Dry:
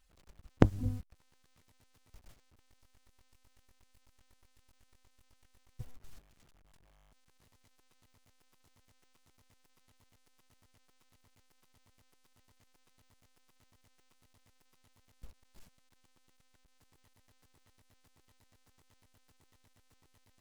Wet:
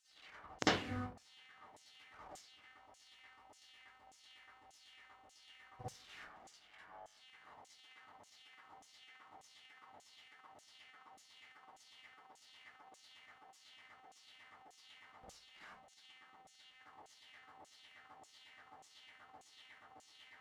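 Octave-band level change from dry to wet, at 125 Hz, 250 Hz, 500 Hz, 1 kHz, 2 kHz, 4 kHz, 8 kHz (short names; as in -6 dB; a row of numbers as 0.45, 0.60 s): -15.0, -9.0, -5.5, +2.5, +7.0, +12.5, +8.0 dB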